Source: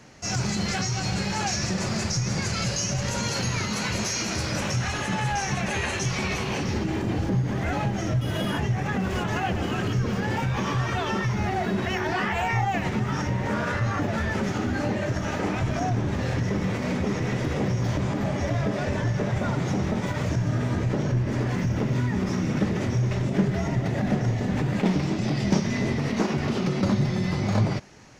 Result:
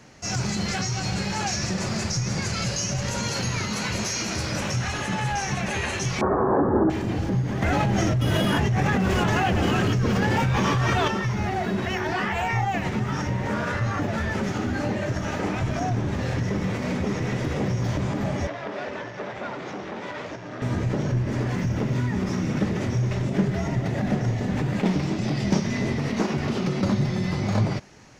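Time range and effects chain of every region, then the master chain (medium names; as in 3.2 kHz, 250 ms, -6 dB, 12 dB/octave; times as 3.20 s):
6.21–6.90 s: Chebyshev low-pass 1.7 kHz, order 6 + high-order bell 560 Hz +11.5 dB 2.6 oct
7.62–11.08 s: hard clipper -19.5 dBFS + level flattener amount 100%
18.47–20.62 s: three-band isolator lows -20 dB, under 270 Hz, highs -17 dB, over 5.1 kHz + transformer saturation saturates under 930 Hz
whole clip: none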